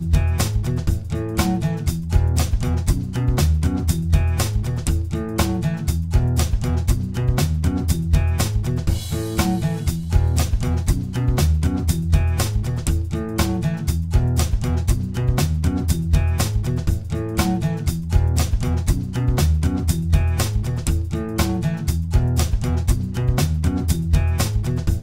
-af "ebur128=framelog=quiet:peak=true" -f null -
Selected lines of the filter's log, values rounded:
Integrated loudness:
  I:         -21.2 LUFS
  Threshold: -31.2 LUFS
Loudness range:
  LRA:         0.9 LU
  Threshold: -41.2 LUFS
  LRA low:   -21.6 LUFS
  LRA high:  -20.7 LUFS
True peak:
  Peak:       -2.6 dBFS